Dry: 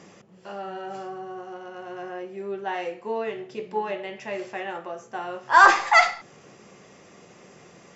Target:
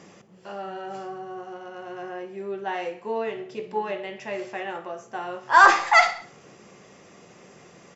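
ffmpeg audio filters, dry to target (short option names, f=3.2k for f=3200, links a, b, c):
-af "aecho=1:1:62|124|186|248:0.119|0.0618|0.0321|0.0167"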